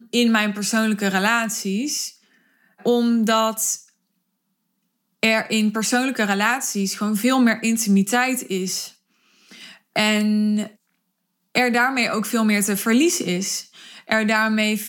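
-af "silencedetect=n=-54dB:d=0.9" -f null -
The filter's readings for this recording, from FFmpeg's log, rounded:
silence_start: 3.92
silence_end: 5.23 | silence_duration: 1.30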